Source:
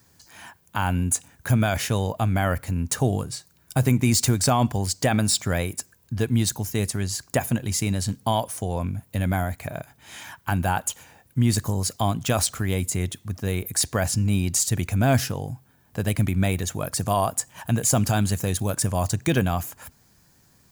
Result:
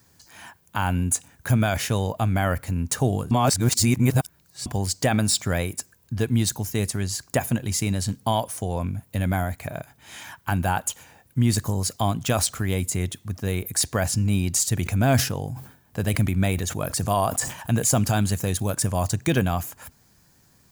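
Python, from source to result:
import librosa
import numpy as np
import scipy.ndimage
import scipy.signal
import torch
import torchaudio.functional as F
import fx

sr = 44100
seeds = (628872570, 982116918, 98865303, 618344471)

y = fx.sustainer(x, sr, db_per_s=110.0, at=(14.8, 17.9))
y = fx.edit(y, sr, fx.reverse_span(start_s=3.31, length_s=1.35), tone=tone)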